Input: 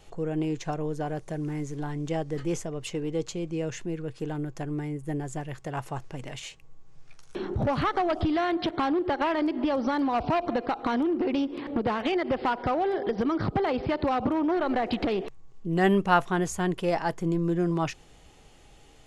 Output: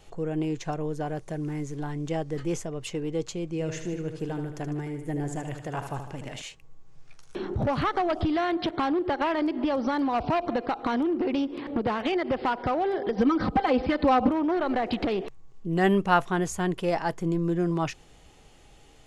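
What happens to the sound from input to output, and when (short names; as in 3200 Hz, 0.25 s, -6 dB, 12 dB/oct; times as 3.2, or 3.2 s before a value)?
3.48–6.42 feedback echo 76 ms, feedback 53%, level -8 dB
13.16–14.31 comb 3.9 ms, depth 97%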